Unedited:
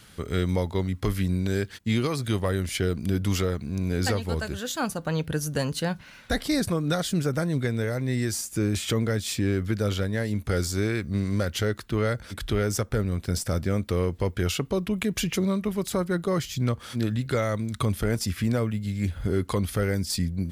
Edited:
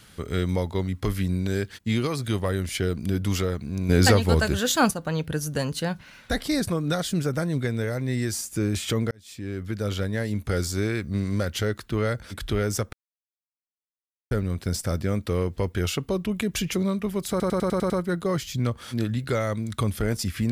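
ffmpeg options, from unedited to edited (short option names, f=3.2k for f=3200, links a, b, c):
-filter_complex "[0:a]asplit=11[a][b][c][d][e][f][g][h][i][j][k];[a]atrim=end=3.892[l];[b]atrim=start=3.888:end=4.912,asetpts=PTS-STARTPTS,volume=8dB[m];[c]atrim=start=4.908:end=9.11,asetpts=PTS-STARTPTS,afade=t=out:st=4.198:d=0.004:c=hsin[n];[d]atrim=start=9.11:end=12.93,asetpts=PTS-STARTPTS,afade=t=in:d=0.94,afade=t=out:st=3.816:d=0.004:c=hsin,apad=pad_dur=1.38[o];[e]atrim=start=12.93:end=16.022,asetpts=PTS-STARTPTS,afade=t=in:d=0.004:c=hsin[p];[f]atrim=start=15.918:end=16.022[q];[g]atrim=start=15.918:end=16.022[r];[h]atrim=start=15.918:end=16.022[s];[i]atrim=start=15.918:end=16.022[t];[j]atrim=start=15.918:end=16.022[u];[k]atrim=start=15.918[v];[l][m]acrossfade=d=0.004:c1=hsin:c2=hsin[w];[n][o][p]concat=n=3:v=0:a=1[x];[w][x]acrossfade=d=0.004:c1=hsin:c2=hsin[y];[y][q]acrossfade=d=0.004:c1=hsin:c2=hsin[z];[z][r]acrossfade=d=0.004:c1=hsin:c2=hsin[aa];[aa][s]acrossfade=d=0.004:c1=hsin:c2=hsin[ab];[ab][t]acrossfade=d=0.004:c1=hsin:c2=hsin[ac];[ac][u]acrossfade=d=0.004:c1=hsin:c2=hsin[ad];[ad][v]acrossfade=d=0.004:c1=hsin:c2=hsin"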